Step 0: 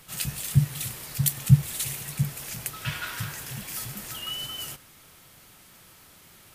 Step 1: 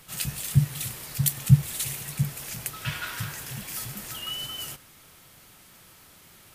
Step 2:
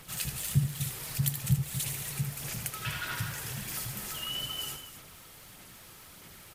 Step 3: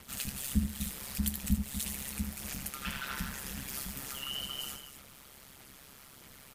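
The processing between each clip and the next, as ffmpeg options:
ffmpeg -i in.wav -af anull out.wav
ffmpeg -i in.wav -filter_complex "[0:a]aphaser=in_gain=1:out_gain=1:delay=2.5:decay=0.33:speed=1.6:type=sinusoidal,acompressor=threshold=-39dB:ratio=1.5,asplit=2[link_01][link_02];[link_02]aecho=0:1:78|246:0.398|0.282[link_03];[link_01][link_03]amix=inputs=2:normalize=0" out.wav
ffmpeg -i in.wav -af "aeval=exprs='val(0)*sin(2*PI*68*n/s)':channel_layout=same" out.wav

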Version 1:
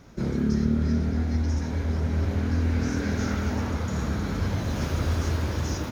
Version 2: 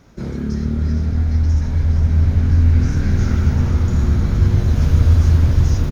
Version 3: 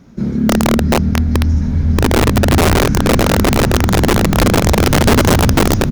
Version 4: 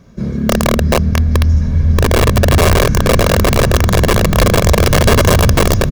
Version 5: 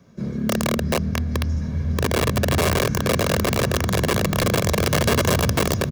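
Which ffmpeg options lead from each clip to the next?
ffmpeg -i in.wav -filter_complex "[0:a]asubboost=boost=6.5:cutoff=150,asplit=2[link_01][link_02];[link_02]asplit=7[link_03][link_04][link_05][link_06][link_07][link_08][link_09];[link_03]adelay=465,afreqshift=-110,volume=-9dB[link_10];[link_04]adelay=930,afreqshift=-220,volume=-13.9dB[link_11];[link_05]adelay=1395,afreqshift=-330,volume=-18.8dB[link_12];[link_06]adelay=1860,afreqshift=-440,volume=-23.6dB[link_13];[link_07]adelay=2325,afreqshift=-550,volume=-28.5dB[link_14];[link_08]adelay=2790,afreqshift=-660,volume=-33.4dB[link_15];[link_09]adelay=3255,afreqshift=-770,volume=-38.3dB[link_16];[link_10][link_11][link_12][link_13][link_14][link_15][link_16]amix=inputs=7:normalize=0[link_17];[link_01][link_17]amix=inputs=2:normalize=0,volume=1dB" out.wav
ffmpeg -i in.wav -af "equalizer=frequency=210:width=1.3:gain=12,aeval=exprs='(mod(1.88*val(0)+1,2)-1)/1.88':channel_layout=same" out.wav
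ffmpeg -i in.wav -af "aecho=1:1:1.8:0.5" out.wav
ffmpeg -i in.wav -filter_complex "[0:a]highpass=100,acrossover=split=400|1400|2800[link_01][link_02][link_03][link_04];[link_02]alimiter=limit=-9dB:level=0:latency=1[link_05];[link_01][link_05][link_03][link_04]amix=inputs=4:normalize=0,volume=-7dB" out.wav

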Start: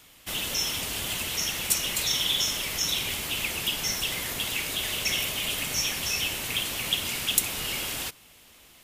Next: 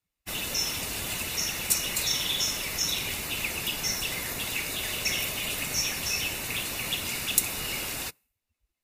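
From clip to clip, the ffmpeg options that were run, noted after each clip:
ffmpeg -i in.wav -af "bandreject=frequency=3200:width=6.4,afftdn=noise_reduction=33:noise_floor=-45" out.wav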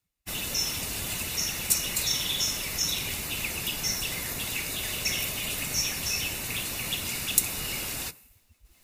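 ffmpeg -i in.wav -af "bass=frequency=250:gain=4,treble=frequency=4000:gain=3,areverse,acompressor=mode=upward:threshold=-39dB:ratio=2.5,areverse,volume=-2dB" out.wav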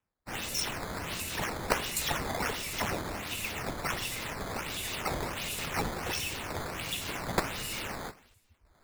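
ffmpeg -i in.wav -filter_complex "[0:a]flanger=delay=8.4:depth=5.3:regen=-47:speed=0.25:shape=triangular,acrossover=split=350|1100[link_01][link_02][link_03];[link_03]acrusher=samples=9:mix=1:aa=0.000001:lfo=1:lforange=14.4:lforate=1.4[link_04];[link_01][link_02][link_04]amix=inputs=3:normalize=0" out.wav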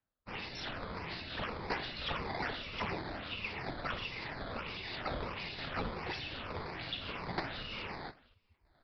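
ffmpeg -i in.wav -af "afftfilt=real='re*pow(10,6/40*sin(2*PI*(0.8*log(max(b,1)*sr/1024/100)/log(2)-(-1.6)*(pts-256)/sr)))':imag='im*pow(10,6/40*sin(2*PI*(0.8*log(max(b,1)*sr/1024/100)/log(2)-(-1.6)*(pts-256)/sr)))':win_size=1024:overlap=0.75,aresample=11025,asoftclip=type=hard:threshold=-23dB,aresample=44100,volume=-5dB" out.wav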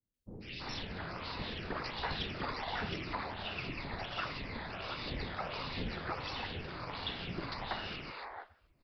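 ffmpeg -i in.wav -filter_complex "[0:a]acrossover=split=490|2200[link_01][link_02][link_03];[link_03]adelay=140[link_04];[link_02]adelay=330[link_05];[link_01][link_05][link_04]amix=inputs=3:normalize=0,volume=1.5dB" out.wav

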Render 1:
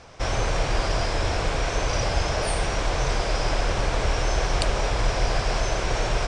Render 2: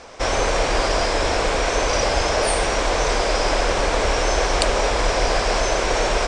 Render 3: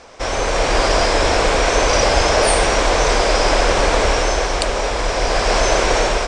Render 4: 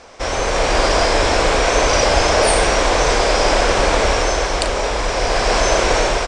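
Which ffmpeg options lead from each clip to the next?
ffmpeg -i in.wav -af "equalizer=frequency=125:width_type=o:width=1:gain=-9,equalizer=frequency=250:width_type=o:width=1:gain=5,equalizer=frequency=500:width_type=o:width=1:gain=6,equalizer=frequency=1000:width_type=o:width=1:gain=4,equalizer=frequency=2000:width_type=o:width=1:gain=4,equalizer=frequency=4000:width_type=o:width=1:gain=3,equalizer=frequency=8000:width_type=o:width=1:gain=7,volume=1dB" out.wav
ffmpeg -i in.wav -af "dynaudnorm=framelen=230:gausssize=5:maxgain=11.5dB,volume=-1dB" out.wav
ffmpeg -i in.wav -filter_complex "[0:a]asplit=2[link_01][link_02];[link_02]adelay=38,volume=-10.5dB[link_03];[link_01][link_03]amix=inputs=2:normalize=0" out.wav

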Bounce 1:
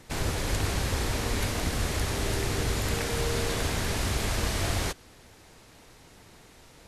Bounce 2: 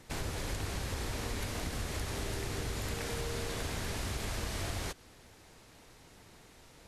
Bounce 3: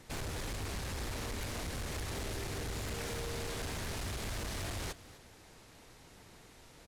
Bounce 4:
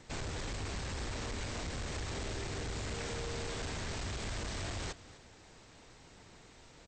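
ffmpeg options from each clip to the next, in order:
ffmpeg -i in.wav -af "acompressor=threshold=-30dB:ratio=3,volume=-4dB" out.wav
ffmpeg -i in.wav -af "volume=35.5dB,asoftclip=hard,volume=-35.5dB,aecho=1:1:253:0.126" out.wav
ffmpeg -i in.wav -ar 32000 -c:a mp2 -b:a 64k out.mp2

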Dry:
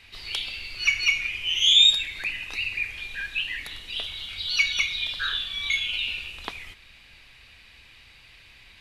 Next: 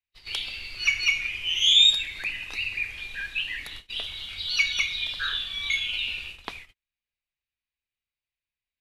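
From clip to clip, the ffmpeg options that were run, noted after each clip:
ffmpeg -i in.wav -af "agate=range=-42dB:threshold=-38dB:ratio=16:detection=peak,volume=-1dB" out.wav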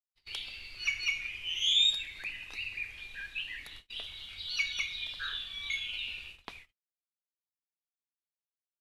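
ffmpeg -i in.wav -af "agate=range=-33dB:threshold=-41dB:ratio=3:detection=peak,volume=-8.5dB" out.wav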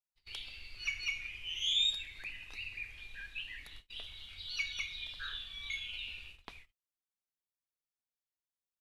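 ffmpeg -i in.wav -af "lowshelf=frequency=90:gain=8.5,volume=-5dB" out.wav

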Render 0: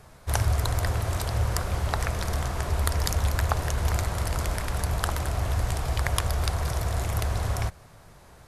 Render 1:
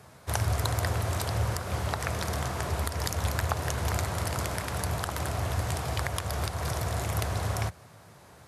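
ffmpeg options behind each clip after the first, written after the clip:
ffmpeg -i in.wav -af "alimiter=limit=-11dB:level=0:latency=1:release=170,highpass=frequency=82:width=0.5412,highpass=frequency=82:width=1.3066" out.wav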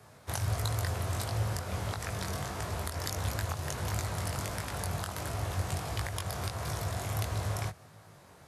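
ffmpeg -i in.wav -filter_complex "[0:a]flanger=delay=19:depth=2.5:speed=1.5,acrossover=split=170|3000[link_01][link_02][link_03];[link_02]acompressor=threshold=-36dB:ratio=6[link_04];[link_01][link_04][link_03]amix=inputs=3:normalize=0" out.wav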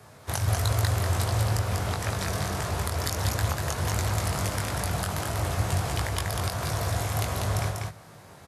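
ffmpeg -i in.wav -af "aecho=1:1:193:0.668,volume=5dB" out.wav

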